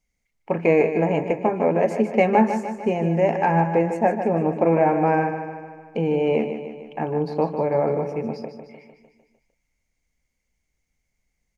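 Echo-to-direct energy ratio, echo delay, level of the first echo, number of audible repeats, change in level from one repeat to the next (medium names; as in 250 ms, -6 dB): -7.5 dB, 151 ms, -9.0 dB, 6, -5.0 dB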